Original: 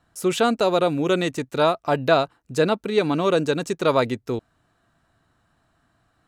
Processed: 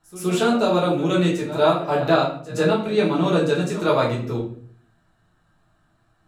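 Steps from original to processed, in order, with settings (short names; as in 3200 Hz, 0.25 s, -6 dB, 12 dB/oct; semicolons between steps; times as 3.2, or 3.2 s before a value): pre-echo 0.119 s -16 dB; shoebox room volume 52 m³, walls mixed, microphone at 1.2 m; gain -6 dB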